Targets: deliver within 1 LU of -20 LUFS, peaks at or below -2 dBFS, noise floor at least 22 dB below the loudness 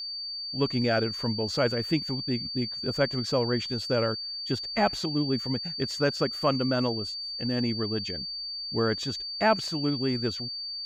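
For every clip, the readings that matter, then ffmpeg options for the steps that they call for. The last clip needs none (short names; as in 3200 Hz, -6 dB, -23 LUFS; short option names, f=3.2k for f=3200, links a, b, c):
steady tone 4600 Hz; tone level -33 dBFS; loudness -28.0 LUFS; peak -11.0 dBFS; loudness target -20.0 LUFS
-> -af "bandreject=f=4.6k:w=30"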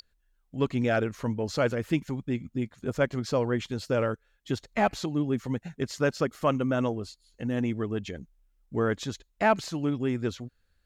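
steady tone none; loudness -29.5 LUFS; peak -12.0 dBFS; loudness target -20.0 LUFS
-> -af "volume=9.5dB"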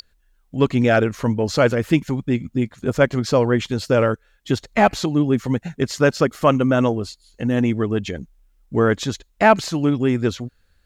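loudness -20.0 LUFS; peak -2.5 dBFS; noise floor -62 dBFS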